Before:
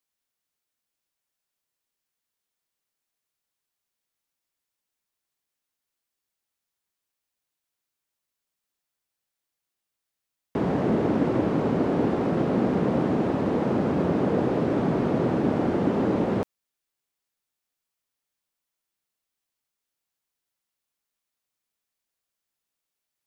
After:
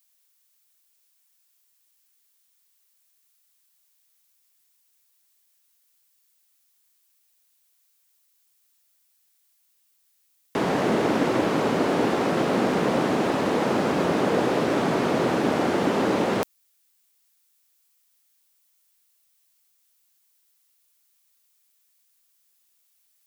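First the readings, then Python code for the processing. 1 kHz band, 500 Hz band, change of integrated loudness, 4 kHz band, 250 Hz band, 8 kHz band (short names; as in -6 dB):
+5.5 dB, +2.0 dB, +1.0 dB, +12.5 dB, -1.0 dB, n/a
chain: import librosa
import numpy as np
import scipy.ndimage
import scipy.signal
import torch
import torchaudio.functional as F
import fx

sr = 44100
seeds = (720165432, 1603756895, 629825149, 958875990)

y = fx.tilt_eq(x, sr, slope=3.5)
y = y * 10.0 ** (6.0 / 20.0)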